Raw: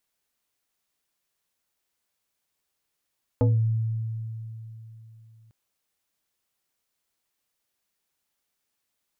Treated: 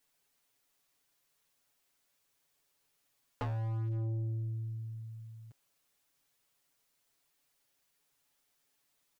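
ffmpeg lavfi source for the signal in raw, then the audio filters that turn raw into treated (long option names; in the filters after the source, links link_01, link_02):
-f lavfi -i "aevalsrc='0.158*pow(10,-3*t/3.43)*sin(2*PI*112*t+1.3*pow(10,-3*t/0.32)*sin(2*PI*3.33*112*t))':duration=2.1:sample_rate=44100"
-filter_complex "[0:a]acrossover=split=530[link_01][link_02];[link_01]asoftclip=type=hard:threshold=-29dB[link_03];[link_03][link_02]amix=inputs=2:normalize=0,aecho=1:1:7.1:0.96,asoftclip=type=tanh:threshold=-32.5dB"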